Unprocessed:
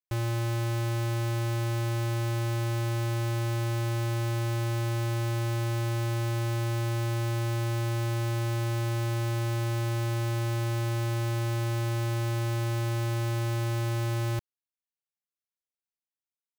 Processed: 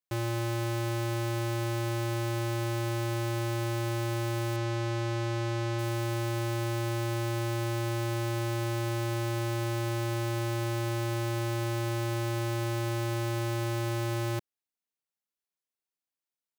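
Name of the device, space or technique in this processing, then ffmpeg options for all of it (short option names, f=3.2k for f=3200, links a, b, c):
filter by subtraction: -filter_complex "[0:a]asplit=2[a][b];[b]lowpass=260,volume=-1[c];[a][c]amix=inputs=2:normalize=0,asettb=1/sr,asplit=3[d][e][f];[d]atrim=end=4.564[g];[e]atrim=start=4.56:end=5.79,asetpts=PTS-STARTPTS,afade=t=in:d=0.004:c=qsin,afade=t=out:st=1.226:d=0.004:c=qsin,acrossover=split=7600[h][i];[i]acompressor=threshold=-59dB:ratio=4:attack=1:release=60[j];[h][j]amix=inputs=2:normalize=0[k];[f]atrim=start=5.786[l];[g][k]acrossfade=d=0.004:c1=hsin:c2=qsin[m];[m][l]acrossfade=d=0.004:c1=qsin:c2=hsin"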